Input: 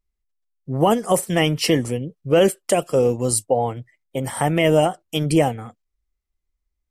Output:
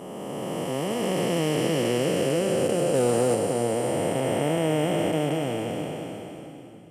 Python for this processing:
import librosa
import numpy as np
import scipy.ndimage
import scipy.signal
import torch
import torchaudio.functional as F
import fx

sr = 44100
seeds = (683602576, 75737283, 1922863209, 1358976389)

p1 = fx.spec_blur(x, sr, span_ms=1480.0)
p2 = fx.leveller(p1, sr, passes=1, at=(2.94, 3.35))
p3 = scipy.signal.sosfilt(scipy.signal.bessel(2, 180.0, 'highpass', norm='mag', fs=sr, output='sos'), p2)
p4 = fx.peak_eq(p3, sr, hz=780.0, db=-2.5, octaves=0.36)
p5 = p4 + fx.echo_split(p4, sr, split_hz=300.0, low_ms=576, high_ms=283, feedback_pct=52, wet_db=-13, dry=0)
y = p5 * librosa.db_to_amplitude(3.5)